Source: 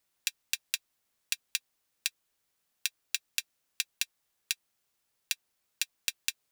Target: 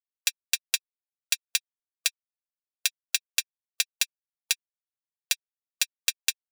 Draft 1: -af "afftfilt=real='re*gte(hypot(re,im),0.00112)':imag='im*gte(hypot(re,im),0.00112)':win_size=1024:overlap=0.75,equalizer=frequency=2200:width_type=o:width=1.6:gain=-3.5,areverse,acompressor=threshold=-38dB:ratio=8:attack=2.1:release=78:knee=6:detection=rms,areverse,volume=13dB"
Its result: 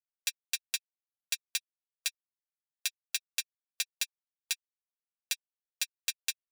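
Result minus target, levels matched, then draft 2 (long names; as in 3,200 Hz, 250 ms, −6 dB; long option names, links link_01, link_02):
downward compressor: peak gain reduction +9 dB
-af "afftfilt=real='re*gte(hypot(re,im),0.00112)':imag='im*gte(hypot(re,im),0.00112)':win_size=1024:overlap=0.75,equalizer=frequency=2200:width_type=o:width=1.6:gain=-3.5,areverse,acompressor=threshold=-27.5dB:ratio=8:attack=2.1:release=78:knee=6:detection=rms,areverse,volume=13dB"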